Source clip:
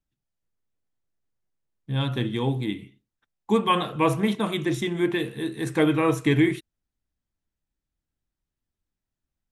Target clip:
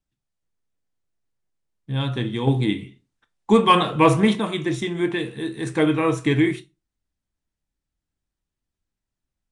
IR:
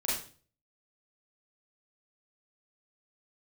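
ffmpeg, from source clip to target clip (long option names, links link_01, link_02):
-filter_complex "[0:a]asettb=1/sr,asplit=3[link_01][link_02][link_03];[link_01]atrim=end=2.474[link_04];[link_02]atrim=start=2.47:end=4.4,asetpts=PTS-STARTPTS,afade=type=in:duration=0.004:curve=qsin,afade=type=out:start_time=1.926:duration=0.004:curve=qsin,acontrast=37[link_05];[link_03]atrim=start=4.396[link_06];[link_04][link_05]acrossfade=duration=0.004:curve1=hsin:curve2=qsin[link_07];[link_07][link_06]acrossfade=duration=0.004:curve1=qsin:curve2=hsin,asplit=2[link_08][link_09];[1:a]atrim=start_sample=2205,asetrate=83790,aresample=44100[link_10];[link_09][link_10]afir=irnorm=-1:irlink=0,volume=-11dB[link_11];[link_08][link_11]amix=inputs=2:normalize=0,aresample=22050,aresample=44100"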